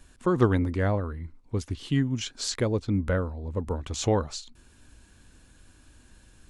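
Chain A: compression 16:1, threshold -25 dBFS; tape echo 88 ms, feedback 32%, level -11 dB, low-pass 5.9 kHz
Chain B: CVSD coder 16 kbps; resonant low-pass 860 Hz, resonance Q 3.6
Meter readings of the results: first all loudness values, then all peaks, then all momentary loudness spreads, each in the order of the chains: -32.0 LUFS, -27.0 LUFS; -15.0 dBFS, -9.0 dBFS; 7 LU, 11 LU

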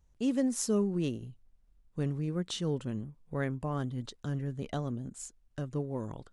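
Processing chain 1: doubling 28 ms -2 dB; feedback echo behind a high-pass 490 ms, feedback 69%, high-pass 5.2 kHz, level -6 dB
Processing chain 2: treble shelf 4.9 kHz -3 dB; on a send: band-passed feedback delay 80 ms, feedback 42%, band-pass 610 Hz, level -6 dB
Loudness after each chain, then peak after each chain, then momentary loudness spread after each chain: -32.0 LUFS, -34.0 LUFS; -14.5 dBFS, -16.5 dBFS; 15 LU, 12 LU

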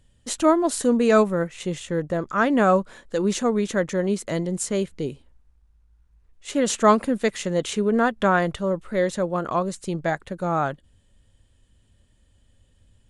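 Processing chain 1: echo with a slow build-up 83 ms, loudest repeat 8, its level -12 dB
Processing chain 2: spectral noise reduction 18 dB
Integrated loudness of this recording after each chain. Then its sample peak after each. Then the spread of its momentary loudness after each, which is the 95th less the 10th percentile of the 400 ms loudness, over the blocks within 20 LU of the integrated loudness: -20.5 LUFS, -23.5 LUFS; -4.5 dBFS, -5.0 dBFS; 12 LU, 11 LU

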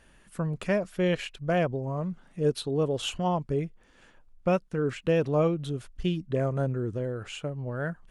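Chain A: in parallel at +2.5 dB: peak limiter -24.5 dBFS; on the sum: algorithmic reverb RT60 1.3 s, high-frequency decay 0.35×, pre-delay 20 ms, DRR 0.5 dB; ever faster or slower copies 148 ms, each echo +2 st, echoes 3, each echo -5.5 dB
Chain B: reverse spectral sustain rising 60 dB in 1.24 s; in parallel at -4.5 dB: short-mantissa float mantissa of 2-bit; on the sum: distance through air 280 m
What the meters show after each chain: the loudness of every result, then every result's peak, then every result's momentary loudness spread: -20.5 LUFS, -24.0 LUFS; -5.5 dBFS, -9.5 dBFS; 7 LU, 8 LU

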